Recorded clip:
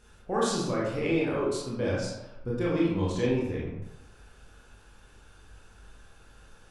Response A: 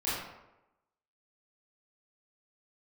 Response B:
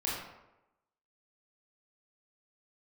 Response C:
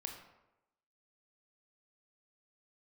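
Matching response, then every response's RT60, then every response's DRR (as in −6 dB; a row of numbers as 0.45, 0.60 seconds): B; 0.95, 0.95, 0.95 seconds; −11.0, −6.0, 2.5 decibels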